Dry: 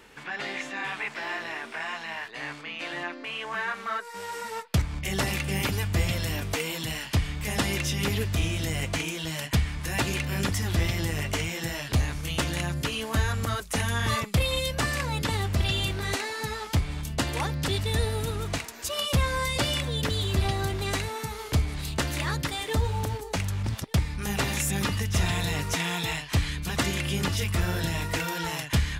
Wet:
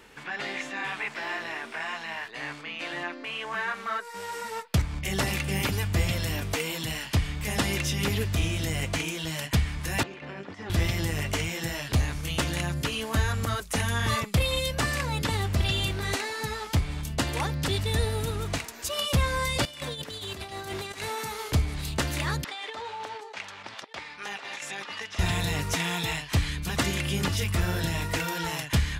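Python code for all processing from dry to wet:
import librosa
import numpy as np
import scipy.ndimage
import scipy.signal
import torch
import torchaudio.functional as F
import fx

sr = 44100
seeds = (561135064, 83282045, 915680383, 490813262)

y = fx.chain(x, sr, fx.highpass(hz=320.0, slope=12),
    fx.over_compress(threshold_db=-36.0, ratio=-1.0),
    fx.spacing_loss(db_at_10k=33), at=(10.03, 10.7))
y = fx.chain(y, sr, fx.highpass(hz=360.0, slope=6),
    fx.over_compress(threshold_db=-35.0, ratio=-0.5), at=(19.65, 21.51))
y = fx.chain(y, sr, fx.bandpass_edges(low_hz=650.0, high_hz=4100.0),
    fx.over_compress(threshold_db=-37.0, ratio=-1.0), at=(22.44, 25.19))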